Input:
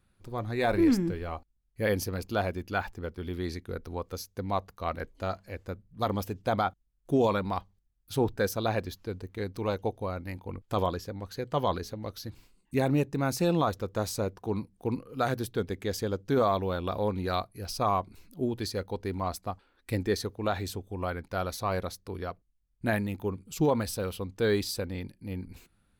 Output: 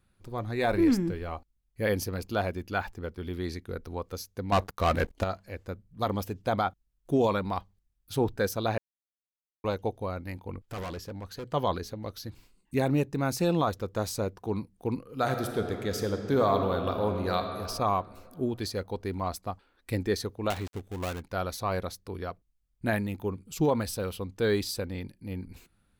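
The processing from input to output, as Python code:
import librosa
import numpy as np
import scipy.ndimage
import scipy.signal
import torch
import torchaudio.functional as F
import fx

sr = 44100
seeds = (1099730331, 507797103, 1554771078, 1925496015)

y = fx.leveller(x, sr, passes=3, at=(4.52, 5.24))
y = fx.clip_hard(y, sr, threshold_db=-34.0, at=(10.67, 11.49))
y = fx.reverb_throw(y, sr, start_s=15.12, length_s=2.38, rt60_s=2.5, drr_db=5.0)
y = fx.dead_time(y, sr, dead_ms=0.25, at=(20.5, 21.22))
y = fx.edit(y, sr, fx.silence(start_s=8.78, length_s=0.86), tone=tone)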